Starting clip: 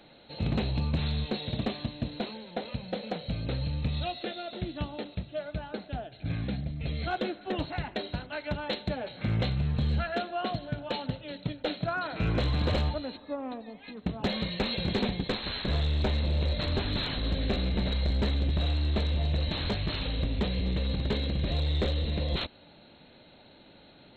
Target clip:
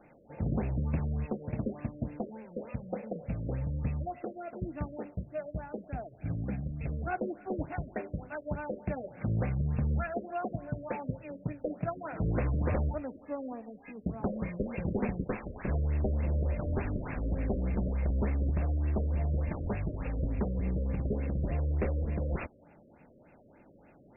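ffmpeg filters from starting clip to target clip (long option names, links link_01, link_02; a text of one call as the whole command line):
ffmpeg -i in.wav -af "afftfilt=real='re*lt(b*sr/1024,600*pow(2800/600,0.5+0.5*sin(2*PI*3.4*pts/sr)))':imag='im*lt(b*sr/1024,600*pow(2800/600,0.5+0.5*sin(2*PI*3.4*pts/sr)))':win_size=1024:overlap=0.75,volume=-2dB" out.wav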